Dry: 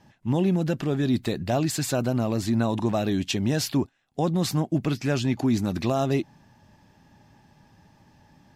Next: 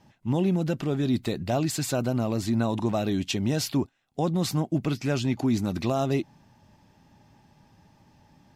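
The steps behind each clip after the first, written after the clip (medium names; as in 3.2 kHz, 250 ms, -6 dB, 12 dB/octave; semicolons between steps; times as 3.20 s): band-stop 1.7 kHz, Q 14; trim -1.5 dB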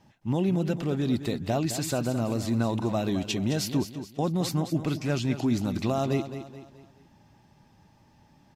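feedback delay 214 ms, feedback 42%, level -11 dB; trim -1.5 dB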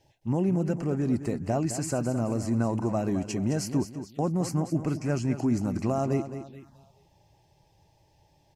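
touch-sensitive phaser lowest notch 190 Hz, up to 3.6 kHz, full sweep at -31 dBFS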